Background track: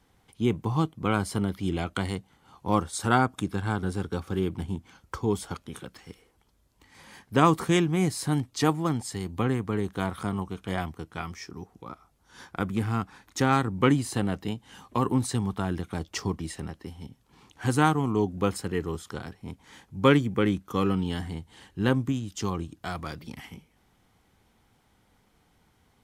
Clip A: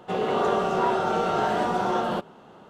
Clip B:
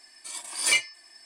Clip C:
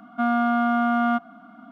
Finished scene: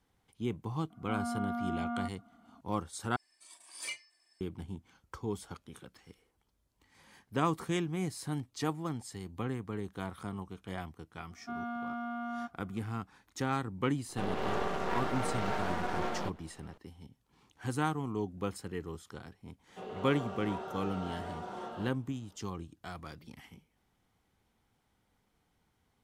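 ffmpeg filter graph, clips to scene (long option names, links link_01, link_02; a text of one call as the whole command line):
ffmpeg -i bed.wav -i cue0.wav -i cue1.wav -i cue2.wav -filter_complex "[3:a]asplit=2[link_01][link_02];[1:a]asplit=2[link_03][link_04];[0:a]volume=-10dB[link_05];[link_01]lowpass=frequency=1100:poles=1[link_06];[link_03]aeval=exprs='max(val(0),0)':channel_layout=same[link_07];[link_05]asplit=2[link_08][link_09];[link_08]atrim=end=3.164[link_10];[2:a]atrim=end=1.25,asetpts=PTS-STARTPTS,volume=-18dB[link_11];[link_09]atrim=start=4.406[link_12];[link_06]atrim=end=1.71,asetpts=PTS-STARTPTS,volume=-13.5dB,afade=type=in:duration=0.004:curve=hsin,afade=type=out:start_time=1.706:duration=0.004:curve=hsin,adelay=900[link_13];[link_02]atrim=end=1.71,asetpts=PTS-STARTPTS,volume=-17dB,afade=type=in:duration=0.004:curve=hsin,afade=type=out:start_time=1.706:duration=0.004:curve=hsin,adelay=11290[link_14];[link_07]atrim=end=2.69,asetpts=PTS-STARTPTS,volume=-6dB,afade=type=in:duration=0.004:curve=hsin,afade=type=out:start_time=2.686:duration=0.004:curve=hsin,adelay=14090[link_15];[link_04]atrim=end=2.69,asetpts=PTS-STARTPTS,volume=-17.5dB,afade=type=in:duration=0.004:curve=hsin,afade=type=out:start_time=2.686:duration=0.004:curve=hsin,adelay=19680[link_16];[link_10][link_11]acrossfade=duration=0.004:curve1=hsin:curve2=hsin[link_17];[link_17][link_12]acrossfade=duration=0.004:curve1=hsin:curve2=hsin[link_18];[link_18][link_13][link_14][link_15][link_16]amix=inputs=5:normalize=0" out.wav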